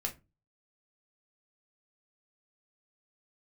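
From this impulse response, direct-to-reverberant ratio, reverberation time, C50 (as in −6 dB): 1.5 dB, 0.25 s, 15.5 dB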